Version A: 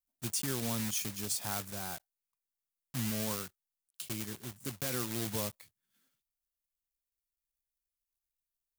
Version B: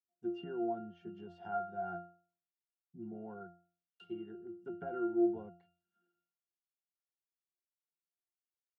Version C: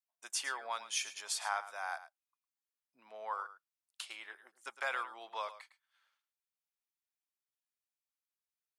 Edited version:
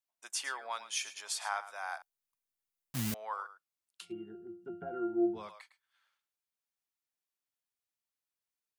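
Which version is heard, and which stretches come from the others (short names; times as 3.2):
C
2.02–3.14 from A
4.02–5.45 from B, crossfade 0.24 s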